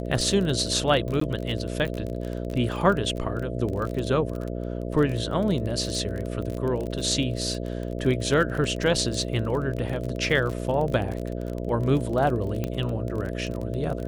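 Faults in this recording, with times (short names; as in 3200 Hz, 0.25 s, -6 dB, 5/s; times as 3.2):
buzz 60 Hz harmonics 11 -31 dBFS
crackle 32/s -29 dBFS
1.2–1.21 gap 14 ms
12.64 pop -15 dBFS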